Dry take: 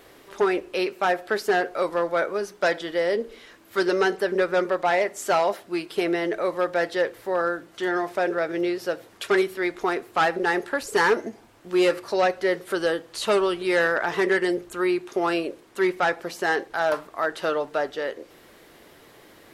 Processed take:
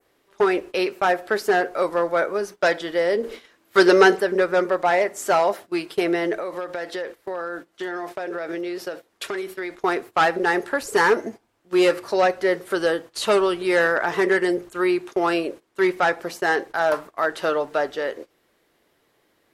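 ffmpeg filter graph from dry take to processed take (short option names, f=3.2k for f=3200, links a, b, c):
-filter_complex "[0:a]asettb=1/sr,asplit=3[a][b][c];[a]atrim=end=3.234[d];[b]atrim=start=3.23:end=4.2,asetpts=PTS-STARTPTS,afade=t=in:d=0.004:c=qsin,afade=t=out:st=0.966:d=0.004:c=qsin,lowshelf=f=91:g=-6,acontrast=59[e];[c]atrim=start=4.196[f];[d][e]acrossfade=d=0.004:c1=hsin:c2=qsin[g];[g][f]acrossfade=d=0.004:c1=qsin:c2=hsin,asettb=1/sr,asplit=3[h][i][j];[h]atrim=end=6.394[k];[i]atrim=start=6.39:end=9.79,asetpts=PTS-STARTPTS,afade=t=in:d=0.004:c=qsin,afade=t=out:st=3.396:d=0.004:c=qsin,equalizer=f=130:w=4.2:g=-14.5,acompressor=threshold=-27dB:ratio=12:attack=3.2:release=140:knee=1:detection=peak[l];[j]atrim=start=9.786[m];[k][l]acrossfade=d=0.004:c1=hsin:c2=qsin[n];[n][m]acrossfade=d=0.004:c1=qsin:c2=hsin,lowshelf=f=230:g=-2,agate=range=-17dB:threshold=-38dB:ratio=16:detection=peak,adynamicequalizer=threshold=0.00708:dfrequency=3500:dqfactor=1:tfrequency=3500:tqfactor=1:attack=5:release=100:ratio=0.375:range=2:mode=cutabove:tftype=bell,volume=3dB"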